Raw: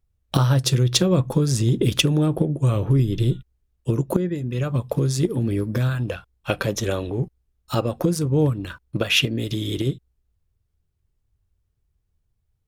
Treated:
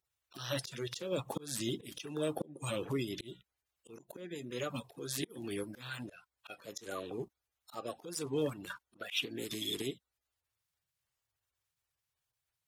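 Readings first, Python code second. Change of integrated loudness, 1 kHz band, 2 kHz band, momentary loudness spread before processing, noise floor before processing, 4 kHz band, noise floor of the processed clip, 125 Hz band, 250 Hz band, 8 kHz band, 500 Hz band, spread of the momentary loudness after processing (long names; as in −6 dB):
−17.0 dB, −14.0 dB, −14.5 dB, 9 LU, −72 dBFS, −14.5 dB, below −85 dBFS, −26.0 dB, −18.0 dB, −13.5 dB, −13.5 dB, 14 LU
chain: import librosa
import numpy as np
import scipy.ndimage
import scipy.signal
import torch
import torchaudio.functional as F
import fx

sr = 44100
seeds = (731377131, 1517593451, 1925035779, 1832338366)

y = fx.spec_quant(x, sr, step_db=30)
y = fx.highpass(y, sr, hz=1100.0, slope=6)
y = fx.auto_swell(y, sr, attack_ms=277.0)
y = y * librosa.db_to_amplitude(-3.0)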